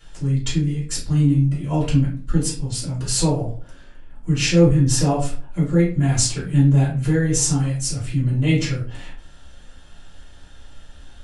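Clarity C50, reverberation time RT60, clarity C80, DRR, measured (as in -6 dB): 5.5 dB, 0.45 s, 11.5 dB, -8.0 dB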